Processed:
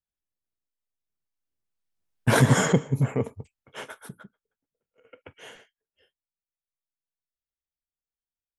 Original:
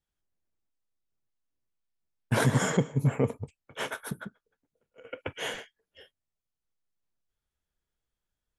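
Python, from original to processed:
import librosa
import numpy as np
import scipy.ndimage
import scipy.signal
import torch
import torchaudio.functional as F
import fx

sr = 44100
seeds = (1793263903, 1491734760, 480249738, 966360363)

y = fx.doppler_pass(x, sr, speed_mps=7, closest_m=2.8, pass_at_s=2.48)
y = y * 10.0 ** (6.0 / 20.0)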